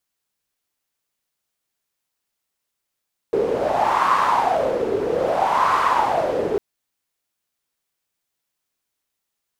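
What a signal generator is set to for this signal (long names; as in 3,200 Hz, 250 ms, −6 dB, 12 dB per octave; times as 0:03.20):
wind from filtered noise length 3.25 s, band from 420 Hz, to 1,100 Hz, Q 6.6, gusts 2, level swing 3.5 dB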